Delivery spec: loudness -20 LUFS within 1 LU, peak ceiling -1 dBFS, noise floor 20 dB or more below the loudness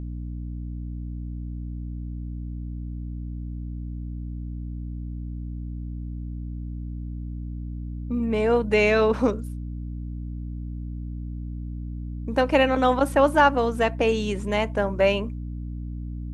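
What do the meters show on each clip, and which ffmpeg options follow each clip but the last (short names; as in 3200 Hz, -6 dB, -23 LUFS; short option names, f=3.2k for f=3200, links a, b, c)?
hum 60 Hz; harmonics up to 300 Hz; hum level -30 dBFS; loudness -26.5 LUFS; peak -5.0 dBFS; loudness target -20.0 LUFS
-> -af "bandreject=f=60:t=h:w=6,bandreject=f=120:t=h:w=6,bandreject=f=180:t=h:w=6,bandreject=f=240:t=h:w=6,bandreject=f=300:t=h:w=6"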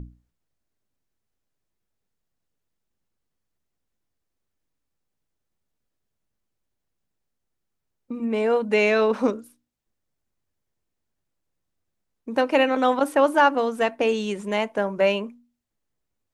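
hum none; loudness -22.0 LUFS; peak -6.5 dBFS; loudness target -20.0 LUFS
-> -af "volume=2dB"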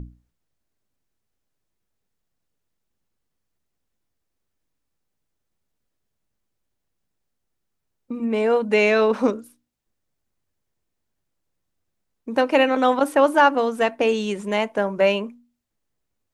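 loudness -20.0 LUFS; peak -4.5 dBFS; noise floor -78 dBFS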